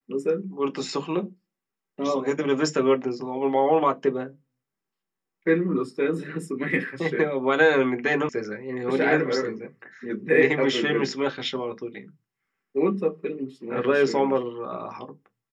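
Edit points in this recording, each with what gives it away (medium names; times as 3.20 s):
8.29 s: sound stops dead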